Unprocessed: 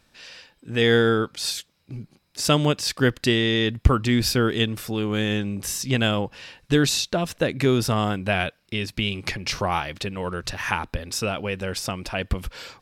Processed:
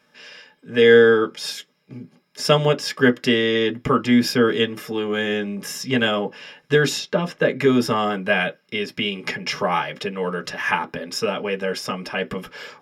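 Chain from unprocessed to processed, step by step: 6.98–7.59 s: treble shelf 6.2 kHz -> 10 kHz -10.5 dB; reverberation, pre-delay 3 ms, DRR 2.5 dB; trim -4.5 dB

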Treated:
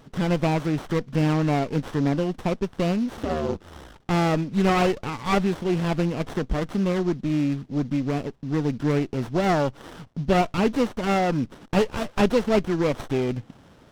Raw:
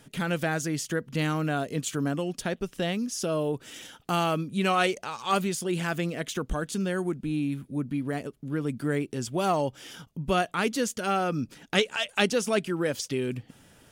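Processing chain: CVSD coder 32 kbps; 3.16–4.01 s: ring modulator 120 Hz -> 22 Hz; sliding maximum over 17 samples; trim +5.5 dB

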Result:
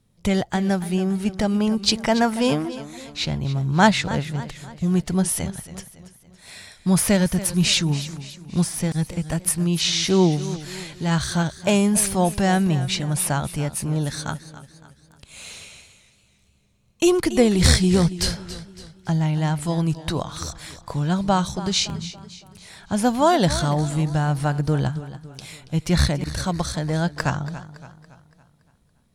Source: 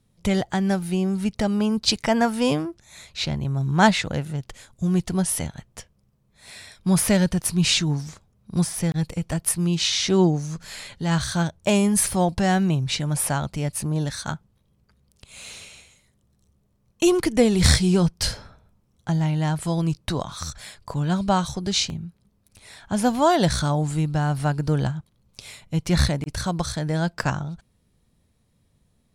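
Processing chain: modulated delay 282 ms, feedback 46%, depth 72 cents, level -14.5 dB; trim +1 dB

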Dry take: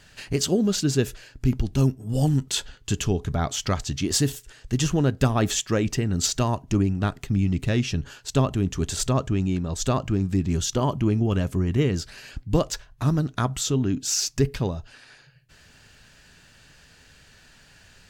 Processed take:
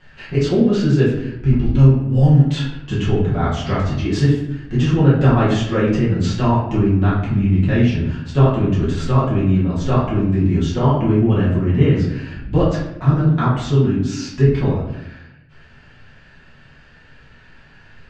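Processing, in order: low-pass 2.6 kHz 12 dB/octave; reverberation RT60 0.80 s, pre-delay 5 ms, DRR -8.5 dB; trim -2 dB

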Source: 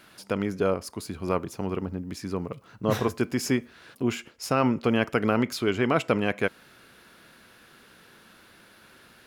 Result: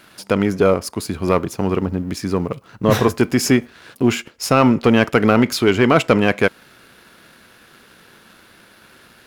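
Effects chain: waveshaping leveller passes 1; trim +7 dB

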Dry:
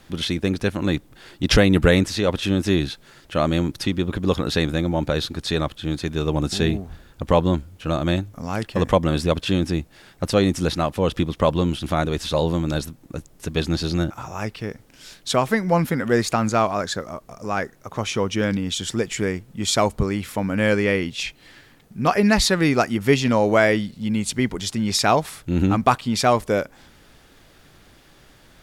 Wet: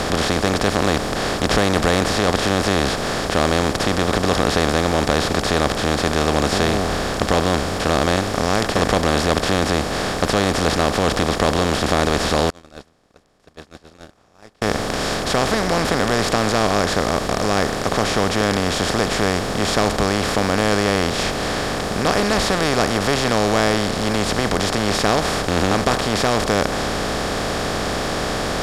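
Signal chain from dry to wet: spectral levelling over time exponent 0.2; 12.50–14.62 s: gate -4 dBFS, range -37 dB; trim -9 dB

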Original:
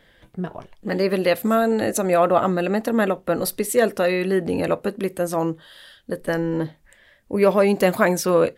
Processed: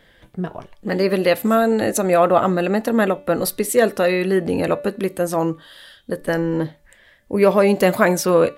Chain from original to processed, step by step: de-hum 290.2 Hz, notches 15; trim +2.5 dB

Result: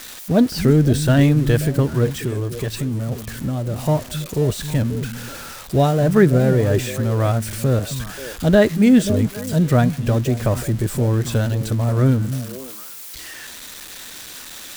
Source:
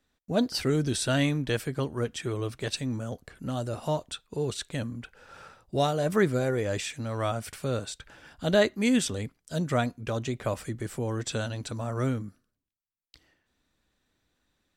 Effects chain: zero-crossing glitches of -22.5 dBFS; tilt EQ -3 dB/octave; 2.07–3.79 s: compression, threshold -25 dBFS, peak gain reduction 6 dB; dynamic bell 1.7 kHz, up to +4 dB, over -50 dBFS, Q 4.6; on a send: repeats whose band climbs or falls 267 ms, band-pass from 170 Hz, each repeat 1.4 oct, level -7.5 dB; on the sum: trim +5.5 dB

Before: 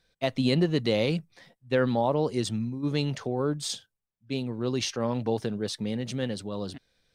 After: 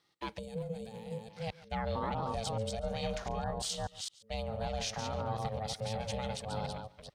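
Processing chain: chunks repeated in reverse 215 ms, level -5 dB; peak limiter -22 dBFS, peak gain reduction 11 dB; bass shelf 170 Hz -5 dB; delay 141 ms -19.5 dB; time-frequency box 0.39–1.29 s, 210–6800 Hz -16 dB; ring modulator 330 Hz; high-pass 41 Hz; peaking EQ 280 Hz -4.5 dB 0.67 oct

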